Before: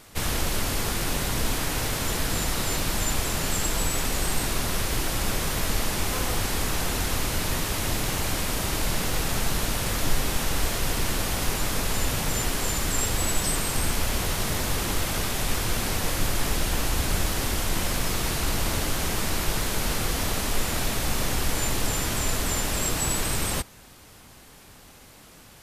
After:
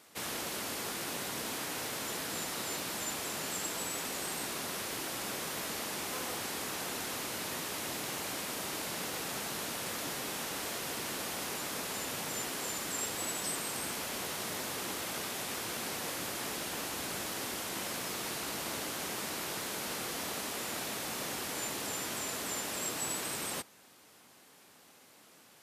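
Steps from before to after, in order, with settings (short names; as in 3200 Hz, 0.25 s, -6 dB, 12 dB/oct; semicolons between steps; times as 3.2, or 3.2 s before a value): HPF 230 Hz 12 dB/oct; gain -8.5 dB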